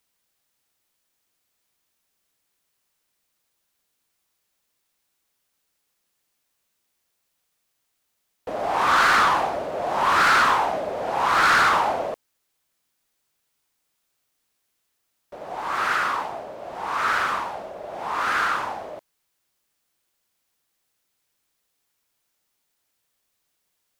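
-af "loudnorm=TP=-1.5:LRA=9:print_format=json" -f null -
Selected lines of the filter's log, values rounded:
"input_i" : "-21.1",
"input_tp" : "-13.1",
"input_lra" : "11.3",
"input_thresh" : "-32.2",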